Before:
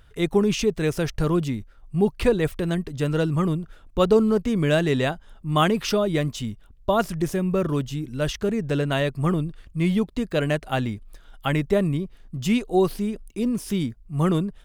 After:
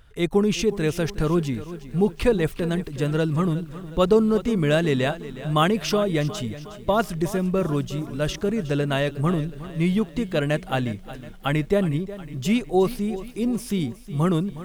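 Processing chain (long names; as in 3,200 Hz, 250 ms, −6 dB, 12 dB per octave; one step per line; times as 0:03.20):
feedback echo at a low word length 364 ms, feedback 55%, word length 8 bits, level −15 dB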